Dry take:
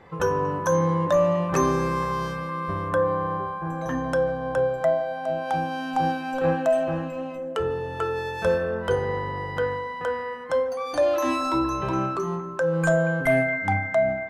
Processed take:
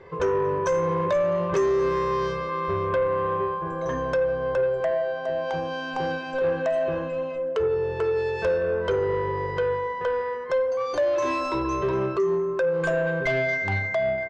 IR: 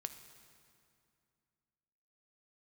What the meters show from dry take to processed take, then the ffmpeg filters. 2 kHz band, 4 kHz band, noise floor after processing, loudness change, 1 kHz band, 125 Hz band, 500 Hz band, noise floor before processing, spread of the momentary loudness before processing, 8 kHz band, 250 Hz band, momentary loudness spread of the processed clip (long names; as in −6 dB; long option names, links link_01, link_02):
−0.5 dB, −0.5 dB, −32 dBFS, 0.0 dB, −2.0 dB, −4.0 dB, +1.0 dB, −33 dBFS, 8 LU, can't be measured, −4.0 dB, 5 LU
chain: -af "lowpass=frequency=6300:width=0.5412,lowpass=frequency=6300:width=1.3066,equalizer=frequency=390:width_type=o:width=0.3:gain=13,aecho=1:1:1.9:0.55,bandreject=frequency=54.13:width_type=h:width=4,bandreject=frequency=108.26:width_type=h:width=4,bandreject=frequency=162.39:width_type=h:width=4,bandreject=frequency=216.52:width_type=h:width=4,bandreject=frequency=270.65:width_type=h:width=4,bandreject=frequency=324.78:width_type=h:width=4,bandreject=frequency=378.91:width_type=h:width=4,bandreject=frequency=433.04:width_type=h:width=4,bandreject=frequency=487.17:width_type=h:width=4,bandreject=frequency=541.3:width_type=h:width=4,bandreject=frequency=595.43:width_type=h:width=4,bandreject=frequency=649.56:width_type=h:width=4,bandreject=frequency=703.69:width_type=h:width=4,bandreject=frequency=757.82:width_type=h:width=4,bandreject=frequency=811.95:width_type=h:width=4,bandreject=frequency=866.08:width_type=h:width=4,bandreject=frequency=920.21:width_type=h:width=4,bandreject=frequency=974.34:width_type=h:width=4,bandreject=frequency=1028.47:width_type=h:width=4,bandreject=frequency=1082.6:width_type=h:width=4,bandreject=frequency=1136.73:width_type=h:width=4,bandreject=frequency=1190.86:width_type=h:width=4,bandreject=frequency=1244.99:width_type=h:width=4,bandreject=frequency=1299.12:width_type=h:width=4,bandreject=frequency=1353.25:width_type=h:width=4,bandreject=frequency=1407.38:width_type=h:width=4,bandreject=frequency=1461.51:width_type=h:width=4,bandreject=frequency=1515.64:width_type=h:width=4,bandreject=frequency=1569.77:width_type=h:width=4,bandreject=frequency=1623.9:width_type=h:width=4,bandreject=frequency=1678.03:width_type=h:width=4,bandreject=frequency=1732.16:width_type=h:width=4,bandreject=frequency=1786.29:width_type=h:width=4,bandreject=frequency=1840.42:width_type=h:width=4,bandreject=frequency=1894.55:width_type=h:width=4,bandreject=frequency=1948.68:width_type=h:width=4,acompressor=threshold=-20dB:ratio=2,asoftclip=type=tanh:threshold=-17dB"